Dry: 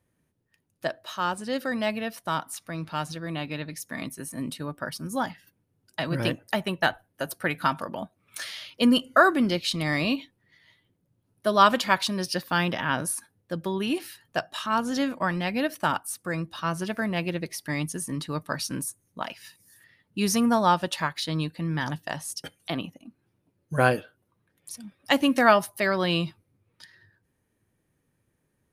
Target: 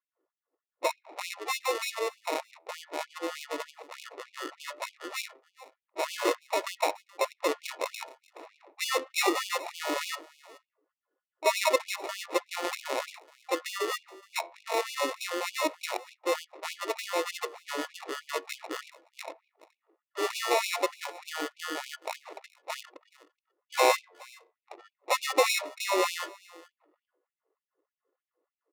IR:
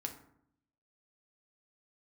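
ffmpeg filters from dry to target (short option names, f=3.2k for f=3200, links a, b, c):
-filter_complex "[0:a]equalizer=f=125:t=o:w=1:g=12,equalizer=f=500:t=o:w=1:g=11,equalizer=f=1k:t=o:w=1:g=-5,equalizer=f=4k:t=o:w=1:g=-7,asplit=2[a][b];[b]aeval=exprs='(mod(5.31*val(0)+1,2)-1)/5.31':c=same,volume=-12dB[c];[a][c]amix=inputs=2:normalize=0,asplit=2[d][e];[e]asetrate=66075,aresample=44100,atempo=0.66742,volume=-13dB[f];[d][f]amix=inputs=2:normalize=0,acrusher=samples=28:mix=1:aa=0.000001,asoftclip=type=tanh:threshold=-4.5dB,flanger=delay=7.5:depth=4.6:regen=85:speed=0.18:shape=sinusoidal,adynamicsmooth=sensitivity=7:basefreq=920,asplit=2[g][h];[h]aecho=0:1:424:0.0794[i];[g][i]amix=inputs=2:normalize=0,afftfilt=real='re*gte(b*sr/1024,280*pow(2300/280,0.5+0.5*sin(2*PI*3.3*pts/sr)))':imag='im*gte(b*sr/1024,280*pow(2300/280,0.5+0.5*sin(2*PI*3.3*pts/sr)))':win_size=1024:overlap=0.75"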